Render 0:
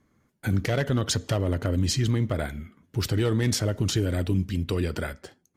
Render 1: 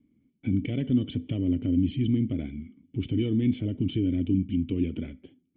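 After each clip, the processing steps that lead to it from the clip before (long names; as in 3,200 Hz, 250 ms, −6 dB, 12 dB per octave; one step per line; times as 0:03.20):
formant resonators in series i
level +7.5 dB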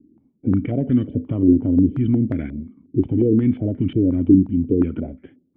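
low-pass on a step sequencer 5.6 Hz 360–1,700 Hz
level +6 dB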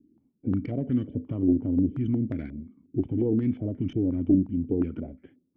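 stylus tracing distortion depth 0.061 ms
level −8 dB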